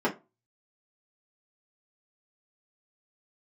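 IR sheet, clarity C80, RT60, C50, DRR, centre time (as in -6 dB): 23.0 dB, 0.25 s, 15.0 dB, -7.5 dB, 15 ms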